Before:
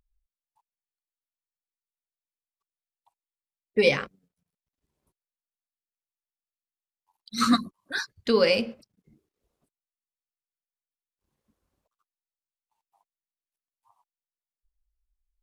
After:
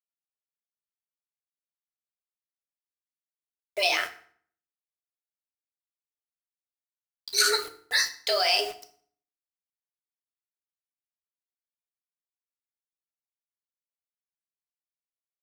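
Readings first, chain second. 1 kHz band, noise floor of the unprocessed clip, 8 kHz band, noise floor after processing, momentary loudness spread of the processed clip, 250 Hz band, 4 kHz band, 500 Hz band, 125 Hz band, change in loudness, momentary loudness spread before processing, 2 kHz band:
+0.5 dB, under -85 dBFS, +11.0 dB, under -85 dBFS, 11 LU, -23.5 dB, +6.0 dB, -7.0 dB, under -20 dB, 0.0 dB, 14 LU, +2.5 dB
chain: dynamic bell 2.4 kHz, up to -3 dB, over -41 dBFS, Q 5.9; high-pass 73 Hz 6 dB/octave; peak limiter -18 dBFS, peak gain reduction 9.5 dB; tilt EQ +3.5 dB/octave; frequency shift +180 Hz; flange 0.33 Hz, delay 7.8 ms, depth 6.1 ms, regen +62%; word length cut 8-bit, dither none; FDN reverb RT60 0.54 s, low-frequency decay 1.3×, high-frequency decay 0.8×, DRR 7 dB; trim +6.5 dB

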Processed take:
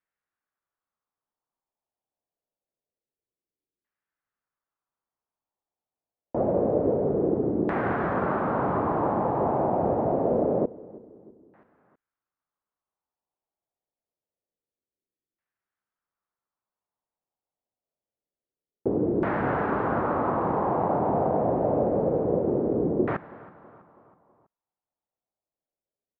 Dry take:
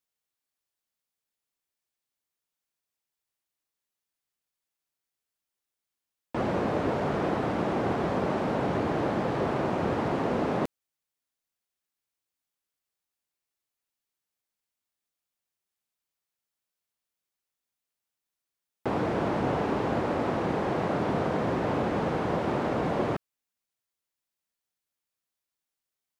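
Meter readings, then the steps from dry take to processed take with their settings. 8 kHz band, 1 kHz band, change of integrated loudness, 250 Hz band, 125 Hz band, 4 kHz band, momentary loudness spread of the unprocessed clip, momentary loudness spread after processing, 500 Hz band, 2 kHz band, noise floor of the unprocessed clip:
no reading, +3.0 dB, +3.0 dB, +2.0 dB, +0.5 dB, under -15 dB, 2 LU, 3 LU, +4.0 dB, -1.0 dB, under -85 dBFS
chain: feedback delay 325 ms, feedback 50%, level -20 dB; LFO low-pass saw down 0.26 Hz 360–1800 Hz

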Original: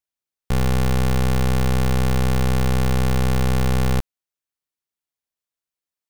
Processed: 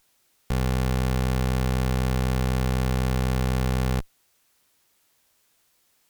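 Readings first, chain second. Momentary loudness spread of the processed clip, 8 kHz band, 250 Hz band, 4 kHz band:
2 LU, -5.5 dB, -4.0 dB, -4.5 dB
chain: jump at every zero crossing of -37 dBFS; Chebyshev shaper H 3 -11 dB, 6 -16 dB, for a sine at -16.5 dBFS; trim -6 dB

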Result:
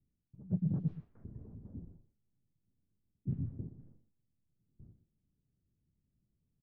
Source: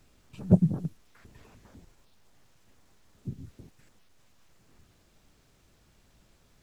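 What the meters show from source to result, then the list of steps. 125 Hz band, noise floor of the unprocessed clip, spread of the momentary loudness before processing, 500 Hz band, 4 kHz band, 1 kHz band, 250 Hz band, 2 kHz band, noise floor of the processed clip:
-7.5 dB, -64 dBFS, 21 LU, -17.5 dB, no reading, under -15 dB, -10.0 dB, under -20 dB, -83 dBFS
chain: gate with hold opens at -49 dBFS; level-controlled noise filter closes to 310 Hz, open at -26 dBFS; peaking EQ 140 Hz +10.5 dB 2.5 oct; reverse; compression 6:1, threshold -31 dBFS, peak gain reduction 24.5 dB; reverse; distance through air 280 m; on a send: delay 121 ms -12.5 dB; on the sum: trim -1 dB

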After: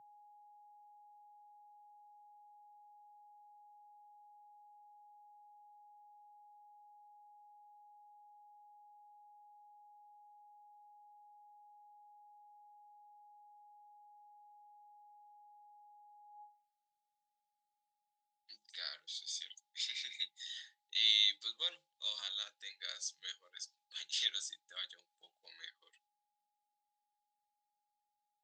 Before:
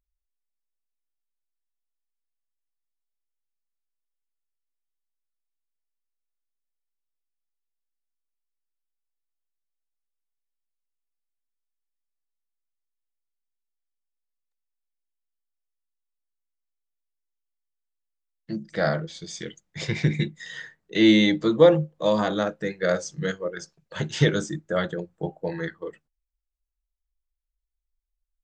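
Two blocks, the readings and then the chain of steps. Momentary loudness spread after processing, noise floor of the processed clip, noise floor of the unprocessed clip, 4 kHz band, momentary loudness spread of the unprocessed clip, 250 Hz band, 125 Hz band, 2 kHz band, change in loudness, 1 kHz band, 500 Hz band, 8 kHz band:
18 LU, under -85 dBFS, -82 dBFS, -1.5 dB, 20 LU, under -40 dB, under -40 dB, -16.5 dB, -13.5 dB, -17.5 dB, under -40 dB, -5.5 dB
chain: whistle 830 Hz -51 dBFS; high-pass sweep 120 Hz -> 3.7 kHz, 16.05–16.71 s; trim -8 dB

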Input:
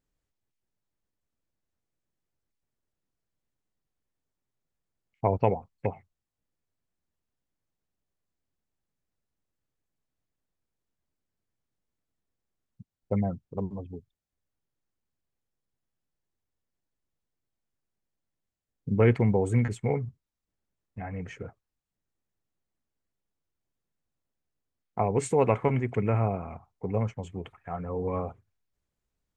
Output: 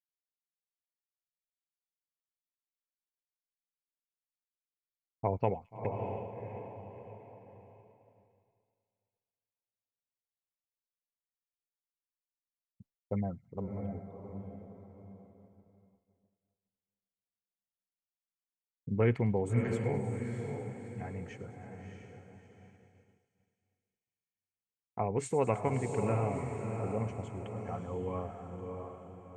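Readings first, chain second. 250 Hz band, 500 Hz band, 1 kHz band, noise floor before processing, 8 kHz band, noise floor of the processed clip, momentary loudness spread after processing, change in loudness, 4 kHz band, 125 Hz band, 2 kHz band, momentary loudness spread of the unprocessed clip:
-5.0 dB, -5.0 dB, -5.0 dB, under -85 dBFS, -4.5 dB, under -85 dBFS, 19 LU, -7.0 dB, no reading, -5.5 dB, -5.0 dB, 17 LU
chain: echo that smears into a reverb 650 ms, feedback 42%, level -5 dB; expander -48 dBFS; feedback echo behind a high-pass 106 ms, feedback 85%, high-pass 4.1 kHz, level -15 dB; trim -6.5 dB

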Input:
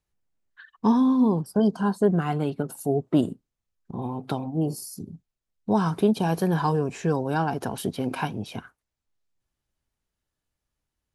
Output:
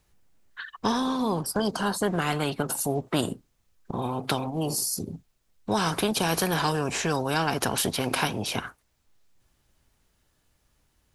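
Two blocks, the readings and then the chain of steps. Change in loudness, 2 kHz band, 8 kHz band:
-2.0 dB, +6.5 dB, +12.0 dB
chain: spectrum-flattening compressor 2:1

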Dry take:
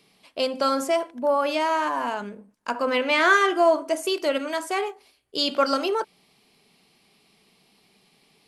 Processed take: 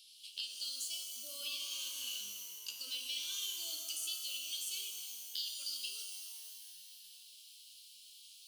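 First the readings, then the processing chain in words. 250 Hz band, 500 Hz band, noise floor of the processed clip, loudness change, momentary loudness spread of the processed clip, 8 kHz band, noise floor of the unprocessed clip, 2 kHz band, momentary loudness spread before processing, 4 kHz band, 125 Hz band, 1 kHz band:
under -40 dB, under -40 dB, -58 dBFS, -16.0 dB, 16 LU, +0.5 dB, -63 dBFS, -26.5 dB, 15 LU, -7.0 dB, no reading, under -40 dB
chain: elliptic high-pass 3 kHz, stop band 40 dB; compression 6:1, threshold -46 dBFS, peak gain reduction 22.5 dB; saturation -30 dBFS, distortion -29 dB; pitch-shifted reverb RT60 2.3 s, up +12 st, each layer -2 dB, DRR 2 dB; trim +5.5 dB

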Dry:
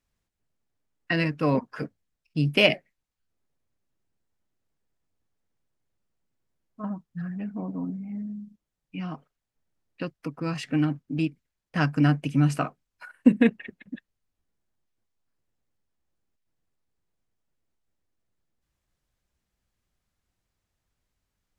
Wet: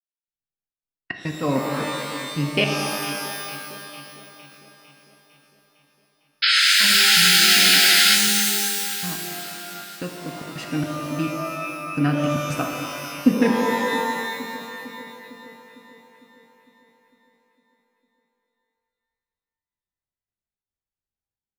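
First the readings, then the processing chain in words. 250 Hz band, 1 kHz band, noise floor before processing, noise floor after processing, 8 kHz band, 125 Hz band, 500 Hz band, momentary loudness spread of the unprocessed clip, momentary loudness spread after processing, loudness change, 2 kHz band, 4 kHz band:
+1.0 dB, +10.0 dB, -84 dBFS, under -85 dBFS, no reading, -1.5 dB, +4.0 dB, 17 LU, 22 LU, +8.5 dB, +12.0 dB, +18.0 dB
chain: gate -42 dBFS, range -20 dB; trance gate "..xxx.xx.xxxxx" 108 bpm -60 dB; painted sound noise, 6.42–8.16 s, 1.3–5.3 kHz -18 dBFS; on a send: echo whose repeats swap between lows and highs 227 ms, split 980 Hz, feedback 76%, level -12 dB; on the sum: pitch-shifted reverb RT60 2 s, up +12 st, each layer -2 dB, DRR 3.5 dB

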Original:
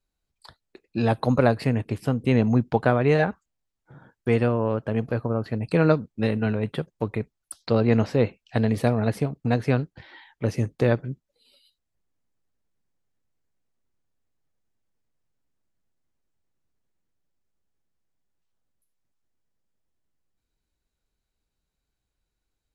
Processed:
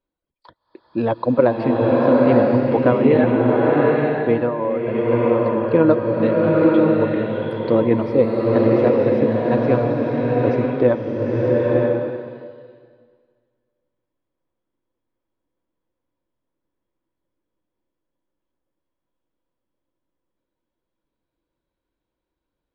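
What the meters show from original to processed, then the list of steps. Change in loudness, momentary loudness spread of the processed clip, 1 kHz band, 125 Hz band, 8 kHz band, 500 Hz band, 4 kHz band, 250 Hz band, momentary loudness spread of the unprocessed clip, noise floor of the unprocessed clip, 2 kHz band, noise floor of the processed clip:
+6.5 dB, 7 LU, +7.0 dB, +0.5 dB, under -15 dB, +9.5 dB, no reading, +7.5 dB, 10 LU, -82 dBFS, +3.0 dB, -82 dBFS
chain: distance through air 280 m; small resonant body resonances 320/520/970/3300 Hz, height 11 dB, ringing for 30 ms; reverb removal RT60 1.6 s; bass shelf 120 Hz -8 dB; swelling reverb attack 940 ms, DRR -4 dB

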